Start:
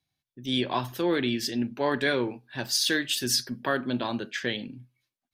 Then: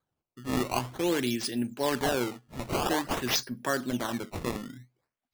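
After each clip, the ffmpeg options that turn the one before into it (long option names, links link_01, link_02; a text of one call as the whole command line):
ffmpeg -i in.wav -af "acrusher=samples=16:mix=1:aa=0.000001:lfo=1:lforange=25.6:lforate=0.5,volume=-2dB" out.wav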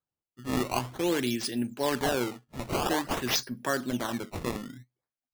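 ffmpeg -i in.wav -af "agate=range=-11dB:threshold=-47dB:ratio=16:detection=peak" out.wav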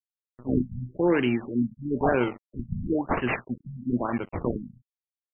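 ffmpeg -i in.wav -af "aeval=exprs='sgn(val(0))*max(abs(val(0))-0.00531,0)':channel_layout=same,afftfilt=real='re*lt(b*sr/1024,220*pow(3200/220,0.5+0.5*sin(2*PI*1*pts/sr)))':imag='im*lt(b*sr/1024,220*pow(3200/220,0.5+0.5*sin(2*PI*1*pts/sr)))':win_size=1024:overlap=0.75,volume=6.5dB" out.wav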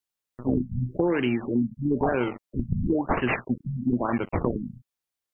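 ffmpeg -i in.wav -af "acompressor=threshold=-29dB:ratio=5,volume=8dB" out.wav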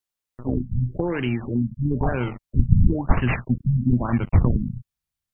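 ffmpeg -i in.wav -af "asubboost=boost=9:cutoff=140" out.wav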